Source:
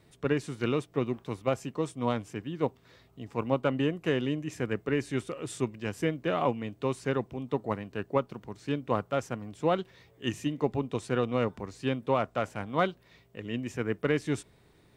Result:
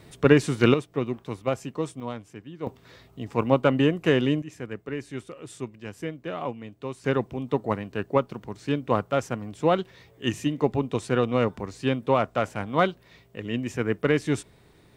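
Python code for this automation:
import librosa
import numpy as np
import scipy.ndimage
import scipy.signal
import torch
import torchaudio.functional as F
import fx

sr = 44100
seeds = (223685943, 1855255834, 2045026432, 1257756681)

y = fx.gain(x, sr, db=fx.steps((0.0, 11.0), (0.74, 2.0), (2.0, -5.0), (2.67, 7.0), (4.42, -4.0), (7.04, 5.0)))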